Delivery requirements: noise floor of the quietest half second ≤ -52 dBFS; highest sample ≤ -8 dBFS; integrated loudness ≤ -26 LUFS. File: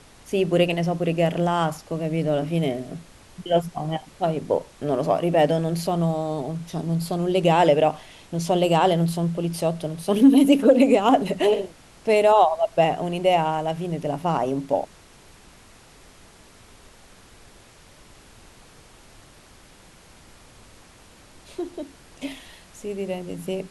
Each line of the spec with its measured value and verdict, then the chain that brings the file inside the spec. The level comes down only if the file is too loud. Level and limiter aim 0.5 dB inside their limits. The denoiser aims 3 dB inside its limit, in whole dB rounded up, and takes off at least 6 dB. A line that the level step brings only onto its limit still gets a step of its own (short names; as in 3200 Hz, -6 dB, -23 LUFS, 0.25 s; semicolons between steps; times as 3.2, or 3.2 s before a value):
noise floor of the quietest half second -50 dBFS: fail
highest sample -5.5 dBFS: fail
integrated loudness -22.0 LUFS: fail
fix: gain -4.5 dB